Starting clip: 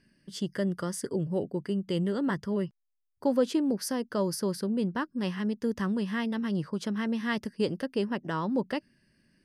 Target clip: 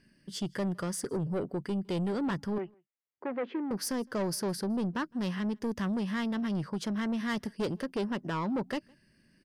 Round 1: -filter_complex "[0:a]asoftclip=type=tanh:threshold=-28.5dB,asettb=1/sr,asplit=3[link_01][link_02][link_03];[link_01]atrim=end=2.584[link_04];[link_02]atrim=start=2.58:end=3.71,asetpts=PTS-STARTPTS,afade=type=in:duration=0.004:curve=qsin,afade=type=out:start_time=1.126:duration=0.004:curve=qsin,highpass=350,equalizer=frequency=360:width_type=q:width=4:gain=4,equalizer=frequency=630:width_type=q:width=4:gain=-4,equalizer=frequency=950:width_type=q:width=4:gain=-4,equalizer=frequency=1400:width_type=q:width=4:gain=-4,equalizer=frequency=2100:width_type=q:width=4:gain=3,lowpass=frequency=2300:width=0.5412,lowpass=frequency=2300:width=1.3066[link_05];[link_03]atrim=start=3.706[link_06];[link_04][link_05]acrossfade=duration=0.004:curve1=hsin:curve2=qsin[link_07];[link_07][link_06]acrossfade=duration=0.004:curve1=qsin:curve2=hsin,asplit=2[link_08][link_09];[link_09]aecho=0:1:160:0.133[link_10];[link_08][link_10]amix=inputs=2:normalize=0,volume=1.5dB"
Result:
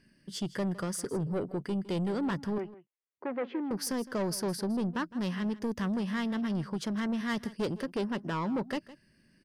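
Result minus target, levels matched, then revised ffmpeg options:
echo-to-direct +12 dB
-filter_complex "[0:a]asoftclip=type=tanh:threshold=-28.5dB,asettb=1/sr,asplit=3[link_01][link_02][link_03];[link_01]atrim=end=2.584[link_04];[link_02]atrim=start=2.58:end=3.71,asetpts=PTS-STARTPTS,afade=type=in:duration=0.004:curve=qsin,afade=type=out:start_time=1.126:duration=0.004:curve=qsin,highpass=350,equalizer=frequency=360:width_type=q:width=4:gain=4,equalizer=frequency=630:width_type=q:width=4:gain=-4,equalizer=frequency=950:width_type=q:width=4:gain=-4,equalizer=frequency=1400:width_type=q:width=4:gain=-4,equalizer=frequency=2100:width_type=q:width=4:gain=3,lowpass=frequency=2300:width=0.5412,lowpass=frequency=2300:width=1.3066[link_05];[link_03]atrim=start=3.706[link_06];[link_04][link_05]acrossfade=duration=0.004:curve1=hsin:curve2=qsin[link_07];[link_07][link_06]acrossfade=duration=0.004:curve1=qsin:curve2=hsin,asplit=2[link_08][link_09];[link_09]aecho=0:1:160:0.0335[link_10];[link_08][link_10]amix=inputs=2:normalize=0,volume=1.5dB"

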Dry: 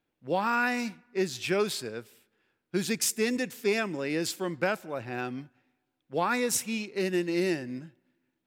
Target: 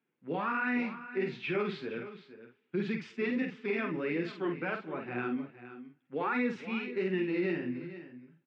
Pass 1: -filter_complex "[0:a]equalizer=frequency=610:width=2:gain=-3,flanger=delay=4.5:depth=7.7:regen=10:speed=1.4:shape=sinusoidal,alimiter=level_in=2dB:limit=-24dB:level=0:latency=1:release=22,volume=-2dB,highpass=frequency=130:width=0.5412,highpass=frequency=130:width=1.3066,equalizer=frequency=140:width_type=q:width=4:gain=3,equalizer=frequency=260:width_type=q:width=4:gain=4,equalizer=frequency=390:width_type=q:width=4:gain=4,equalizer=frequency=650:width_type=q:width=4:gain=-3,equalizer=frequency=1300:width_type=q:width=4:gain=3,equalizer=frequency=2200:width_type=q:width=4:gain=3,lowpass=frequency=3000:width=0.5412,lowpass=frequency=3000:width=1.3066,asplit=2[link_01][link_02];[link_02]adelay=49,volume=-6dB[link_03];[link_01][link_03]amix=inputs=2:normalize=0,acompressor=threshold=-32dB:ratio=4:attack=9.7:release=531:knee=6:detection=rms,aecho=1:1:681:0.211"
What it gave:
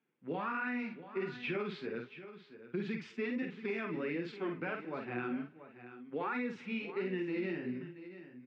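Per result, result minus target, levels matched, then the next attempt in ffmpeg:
echo 214 ms late; downward compressor: peak gain reduction +7 dB
-filter_complex "[0:a]equalizer=frequency=610:width=2:gain=-3,flanger=delay=4.5:depth=7.7:regen=10:speed=1.4:shape=sinusoidal,alimiter=level_in=2dB:limit=-24dB:level=0:latency=1:release=22,volume=-2dB,highpass=frequency=130:width=0.5412,highpass=frequency=130:width=1.3066,equalizer=frequency=140:width_type=q:width=4:gain=3,equalizer=frequency=260:width_type=q:width=4:gain=4,equalizer=frequency=390:width_type=q:width=4:gain=4,equalizer=frequency=650:width_type=q:width=4:gain=-3,equalizer=frequency=1300:width_type=q:width=4:gain=3,equalizer=frequency=2200:width_type=q:width=4:gain=3,lowpass=frequency=3000:width=0.5412,lowpass=frequency=3000:width=1.3066,asplit=2[link_01][link_02];[link_02]adelay=49,volume=-6dB[link_03];[link_01][link_03]amix=inputs=2:normalize=0,acompressor=threshold=-32dB:ratio=4:attack=9.7:release=531:knee=6:detection=rms,aecho=1:1:467:0.211"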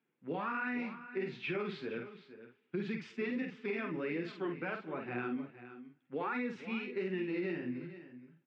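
downward compressor: peak gain reduction +7 dB
-filter_complex "[0:a]equalizer=frequency=610:width=2:gain=-3,flanger=delay=4.5:depth=7.7:regen=10:speed=1.4:shape=sinusoidal,alimiter=level_in=2dB:limit=-24dB:level=0:latency=1:release=22,volume=-2dB,highpass=frequency=130:width=0.5412,highpass=frequency=130:width=1.3066,equalizer=frequency=140:width_type=q:width=4:gain=3,equalizer=frequency=260:width_type=q:width=4:gain=4,equalizer=frequency=390:width_type=q:width=4:gain=4,equalizer=frequency=650:width_type=q:width=4:gain=-3,equalizer=frequency=1300:width_type=q:width=4:gain=3,equalizer=frequency=2200:width_type=q:width=4:gain=3,lowpass=frequency=3000:width=0.5412,lowpass=frequency=3000:width=1.3066,asplit=2[link_01][link_02];[link_02]adelay=49,volume=-6dB[link_03];[link_01][link_03]amix=inputs=2:normalize=0,aecho=1:1:467:0.211"

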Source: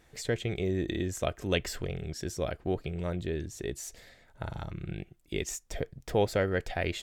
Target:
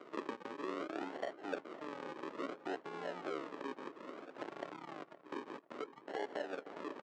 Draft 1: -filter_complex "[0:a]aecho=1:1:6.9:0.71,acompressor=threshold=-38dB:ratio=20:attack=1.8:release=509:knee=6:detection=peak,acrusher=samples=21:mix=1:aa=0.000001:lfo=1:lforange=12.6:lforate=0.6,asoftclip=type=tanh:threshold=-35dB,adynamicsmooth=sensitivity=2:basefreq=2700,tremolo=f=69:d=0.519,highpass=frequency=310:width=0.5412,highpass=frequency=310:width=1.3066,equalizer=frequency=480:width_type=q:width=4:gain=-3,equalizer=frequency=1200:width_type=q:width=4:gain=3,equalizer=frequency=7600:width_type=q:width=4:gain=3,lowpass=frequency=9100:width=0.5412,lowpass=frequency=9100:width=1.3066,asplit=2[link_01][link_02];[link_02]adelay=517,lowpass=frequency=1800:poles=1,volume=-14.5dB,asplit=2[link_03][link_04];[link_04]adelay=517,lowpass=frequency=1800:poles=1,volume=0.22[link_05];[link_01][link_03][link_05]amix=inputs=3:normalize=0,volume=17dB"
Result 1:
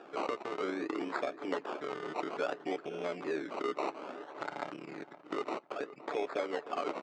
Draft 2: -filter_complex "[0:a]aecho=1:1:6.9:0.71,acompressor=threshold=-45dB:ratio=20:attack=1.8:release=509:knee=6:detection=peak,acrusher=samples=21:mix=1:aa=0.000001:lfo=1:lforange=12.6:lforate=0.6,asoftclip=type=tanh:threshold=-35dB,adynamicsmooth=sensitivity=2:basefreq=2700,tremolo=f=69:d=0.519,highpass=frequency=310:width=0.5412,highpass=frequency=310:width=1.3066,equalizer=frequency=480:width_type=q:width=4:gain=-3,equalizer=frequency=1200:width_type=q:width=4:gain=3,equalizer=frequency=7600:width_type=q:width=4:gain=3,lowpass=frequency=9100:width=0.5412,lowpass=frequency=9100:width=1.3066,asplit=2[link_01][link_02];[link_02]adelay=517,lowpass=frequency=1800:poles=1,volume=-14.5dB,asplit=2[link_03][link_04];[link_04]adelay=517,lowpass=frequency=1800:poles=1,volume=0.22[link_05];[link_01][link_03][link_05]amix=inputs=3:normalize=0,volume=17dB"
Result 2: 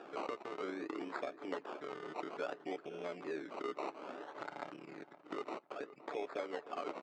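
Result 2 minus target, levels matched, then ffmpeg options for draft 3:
sample-and-hold swept by an LFO: distortion −7 dB
-filter_complex "[0:a]aecho=1:1:6.9:0.71,acompressor=threshold=-45dB:ratio=20:attack=1.8:release=509:knee=6:detection=peak,acrusher=samples=50:mix=1:aa=0.000001:lfo=1:lforange=30:lforate=0.6,asoftclip=type=tanh:threshold=-35dB,adynamicsmooth=sensitivity=2:basefreq=2700,tremolo=f=69:d=0.519,highpass=frequency=310:width=0.5412,highpass=frequency=310:width=1.3066,equalizer=frequency=480:width_type=q:width=4:gain=-3,equalizer=frequency=1200:width_type=q:width=4:gain=3,equalizer=frequency=7600:width_type=q:width=4:gain=3,lowpass=frequency=9100:width=0.5412,lowpass=frequency=9100:width=1.3066,asplit=2[link_01][link_02];[link_02]adelay=517,lowpass=frequency=1800:poles=1,volume=-14.5dB,asplit=2[link_03][link_04];[link_04]adelay=517,lowpass=frequency=1800:poles=1,volume=0.22[link_05];[link_01][link_03][link_05]amix=inputs=3:normalize=0,volume=17dB"

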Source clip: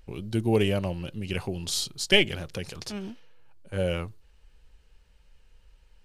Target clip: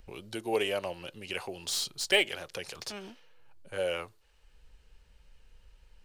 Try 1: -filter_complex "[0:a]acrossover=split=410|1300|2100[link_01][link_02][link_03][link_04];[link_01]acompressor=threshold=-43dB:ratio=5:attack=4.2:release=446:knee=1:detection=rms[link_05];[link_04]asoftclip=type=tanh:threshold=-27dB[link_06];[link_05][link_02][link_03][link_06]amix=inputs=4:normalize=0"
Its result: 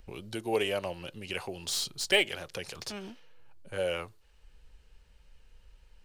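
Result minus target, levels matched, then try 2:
downward compressor: peak gain reduction −5 dB
-filter_complex "[0:a]acrossover=split=410|1300|2100[link_01][link_02][link_03][link_04];[link_01]acompressor=threshold=-49dB:ratio=5:attack=4.2:release=446:knee=1:detection=rms[link_05];[link_04]asoftclip=type=tanh:threshold=-27dB[link_06];[link_05][link_02][link_03][link_06]amix=inputs=4:normalize=0"

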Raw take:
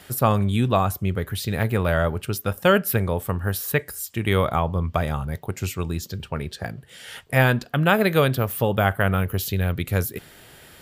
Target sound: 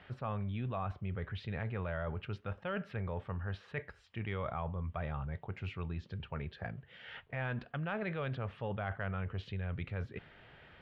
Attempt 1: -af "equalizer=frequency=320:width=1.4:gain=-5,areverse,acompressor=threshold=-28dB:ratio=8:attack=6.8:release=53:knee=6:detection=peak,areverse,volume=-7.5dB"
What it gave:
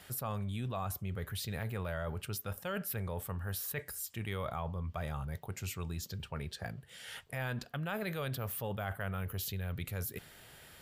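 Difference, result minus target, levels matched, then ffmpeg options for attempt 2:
4,000 Hz band +6.0 dB
-af "lowpass=frequency=2900:width=0.5412,lowpass=frequency=2900:width=1.3066,equalizer=frequency=320:width=1.4:gain=-5,areverse,acompressor=threshold=-28dB:ratio=8:attack=6.8:release=53:knee=6:detection=peak,areverse,volume=-7.5dB"

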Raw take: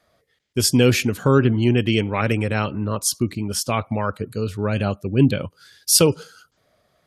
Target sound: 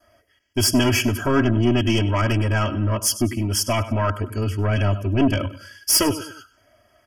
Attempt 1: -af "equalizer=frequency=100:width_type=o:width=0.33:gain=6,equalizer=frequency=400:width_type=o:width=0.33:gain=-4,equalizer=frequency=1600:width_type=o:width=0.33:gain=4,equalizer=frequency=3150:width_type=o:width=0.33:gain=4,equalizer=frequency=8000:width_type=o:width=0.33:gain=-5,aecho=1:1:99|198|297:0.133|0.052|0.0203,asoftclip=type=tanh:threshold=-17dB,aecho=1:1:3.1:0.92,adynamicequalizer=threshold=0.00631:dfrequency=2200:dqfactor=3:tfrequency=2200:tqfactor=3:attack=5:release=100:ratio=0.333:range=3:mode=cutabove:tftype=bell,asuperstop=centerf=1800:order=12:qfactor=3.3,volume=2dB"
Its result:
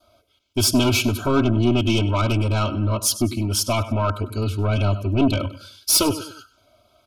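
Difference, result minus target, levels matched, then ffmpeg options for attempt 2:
2,000 Hz band −3.0 dB
-af "equalizer=frequency=100:width_type=o:width=0.33:gain=6,equalizer=frequency=400:width_type=o:width=0.33:gain=-4,equalizer=frequency=1600:width_type=o:width=0.33:gain=4,equalizer=frequency=3150:width_type=o:width=0.33:gain=4,equalizer=frequency=8000:width_type=o:width=0.33:gain=-5,aecho=1:1:99|198|297:0.133|0.052|0.0203,asoftclip=type=tanh:threshold=-17dB,aecho=1:1:3.1:0.92,adynamicequalizer=threshold=0.00631:dfrequency=2200:dqfactor=3:tfrequency=2200:tqfactor=3:attack=5:release=100:ratio=0.333:range=3:mode=cutabove:tftype=bell,asuperstop=centerf=3900:order=12:qfactor=3.3,volume=2dB"

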